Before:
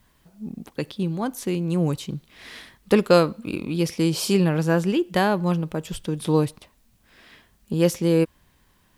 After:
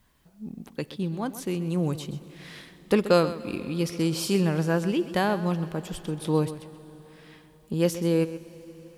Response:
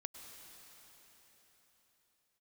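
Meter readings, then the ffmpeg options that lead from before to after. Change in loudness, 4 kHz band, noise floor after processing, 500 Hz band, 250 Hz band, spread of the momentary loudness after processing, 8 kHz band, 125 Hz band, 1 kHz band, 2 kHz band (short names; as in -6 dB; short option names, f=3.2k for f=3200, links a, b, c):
-4.0 dB, -4.0 dB, -56 dBFS, -4.0 dB, -4.0 dB, 19 LU, -4.0 dB, -4.0 dB, -4.0 dB, -3.5 dB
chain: -filter_complex "[0:a]asplit=2[a][b];[1:a]atrim=start_sample=2205,adelay=129[c];[b][c]afir=irnorm=-1:irlink=0,volume=-9dB[d];[a][d]amix=inputs=2:normalize=0,volume=-4dB"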